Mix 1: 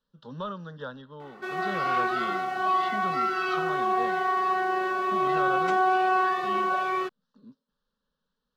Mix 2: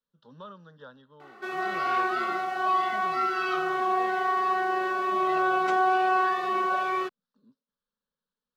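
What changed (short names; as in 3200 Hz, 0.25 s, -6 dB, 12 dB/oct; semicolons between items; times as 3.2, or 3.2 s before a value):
speech -9.0 dB; master: add low shelf 120 Hz -7.5 dB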